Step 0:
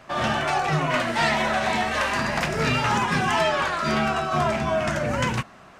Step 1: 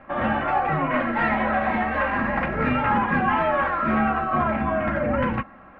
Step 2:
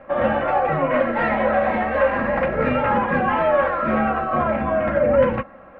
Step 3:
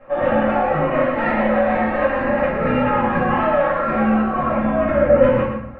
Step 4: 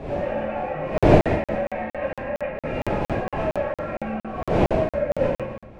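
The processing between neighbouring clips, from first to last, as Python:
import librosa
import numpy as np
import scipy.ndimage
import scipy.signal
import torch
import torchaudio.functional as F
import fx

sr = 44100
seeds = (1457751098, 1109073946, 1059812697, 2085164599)

y1 = scipy.signal.sosfilt(scipy.signal.butter(4, 2100.0, 'lowpass', fs=sr, output='sos'), x)
y1 = fx.low_shelf(y1, sr, hz=210.0, db=3.0)
y1 = y1 + 0.57 * np.pad(y1, (int(3.7 * sr / 1000.0), 0))[:len(y1)]
y2 = fx.peak_eq(y1, sr, hz=530.0, db=13.0, octaves=0.39)
y3 = fx.rider(y2, sr, range_db=4, speed_s=2.0)
y3 = y3 + 10.0 ** (-7.0 / 20.0) * np.pad(y3, (int(120 * sr / 1000.0), 0))[:len(y3)]
y3 = fx.room_shoebox(y3, sr, seeds[0], volume_m3=76.0, walls='mixed', distance_m=2.1)
y3 = y3 * 10.0 ** (-9.5 / 20.0)
y4 = fx.dmg_wind(y3, sr, seeds[1], corner_hz=460.0, level_db=-14.0)
y4 = fx.graphic_eq_31(y4, sr, hz=(250, 630, 1250, 2500), db=(-5, 6, -7, 7))
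y4 = fx.buffer_crackle(y4, sr, first_s=0.98, period_s=0.23, block=2048, kind='zero')
y4 = y4 * 10.0 ** (-11.0 / 20.0)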